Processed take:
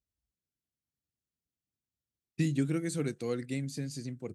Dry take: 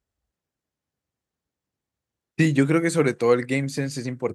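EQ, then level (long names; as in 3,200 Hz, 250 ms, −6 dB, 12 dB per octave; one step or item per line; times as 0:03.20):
octave-band graphic EQ 500/1,000/2,000 Hz −6/−12/−7 dB
−8.0 dB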